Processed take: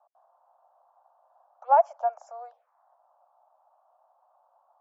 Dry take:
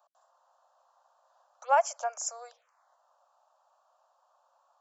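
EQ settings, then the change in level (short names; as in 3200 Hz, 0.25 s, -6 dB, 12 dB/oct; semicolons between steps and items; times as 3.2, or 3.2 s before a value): band-pass 750 Hz, Q 2.9; air absorption 93 m; +7.5 dB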